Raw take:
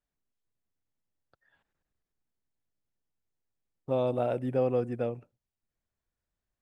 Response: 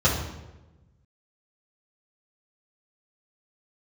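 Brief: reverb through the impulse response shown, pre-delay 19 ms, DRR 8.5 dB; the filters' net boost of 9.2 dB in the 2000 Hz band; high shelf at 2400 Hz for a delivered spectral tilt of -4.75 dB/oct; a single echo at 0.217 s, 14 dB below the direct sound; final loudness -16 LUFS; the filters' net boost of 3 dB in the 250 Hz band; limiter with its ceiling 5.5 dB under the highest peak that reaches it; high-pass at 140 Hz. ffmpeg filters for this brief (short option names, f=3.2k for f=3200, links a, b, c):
-filter_complex "[0:a]highpass=140,equalizer=f=250:t=o:g=3.5,equalizer=f=2k:t=o:g=8.5,highshelf=f=2.4k:g=8.5,alimiter=limit=-20dB:level=0:latency=1,aecho=1:1:217:0.2,asplit=2[a][b];[1:a]atrim=start_sample=2205,adelay=19[c];[b][c]afir=irnorm=-1:irlink=0,volume=-25dB[d];[a][d]amix=inputs=2:normalize=0,volume=14dB"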